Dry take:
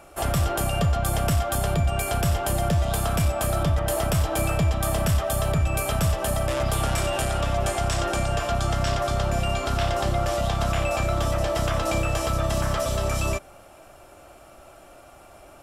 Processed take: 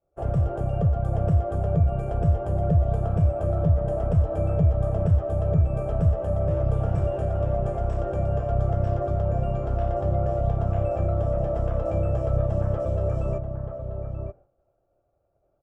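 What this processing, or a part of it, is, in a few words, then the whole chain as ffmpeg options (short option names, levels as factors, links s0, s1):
hearing-loss simulation: -filter_complex "[0:a]lowpass=1600,agate=range=0.0224:threshold=0.0178:ratio=3:detection=peak,equalizer=f=125:t=o:w=1:g=6,equalizer=f=250:t=o:w=1:g=-7,equalizer=f=500:t=o:w=1:g=6,equalizer=f=1000:t=o:w=1:g=-9,equalizer=f=2000:t=o:w=1:g=-11,equalizer=f=4000:t=o:w=1:g=-12,equalizer=f=8000:t=o:w=1:g=4,asplit=2[s0][s1];[s1]adelay=932.9,volume=0.501,highshelf=f=4000:g=-21[s2];[s0][s2]amix=inputs=2:normalize=0,volume=0.841"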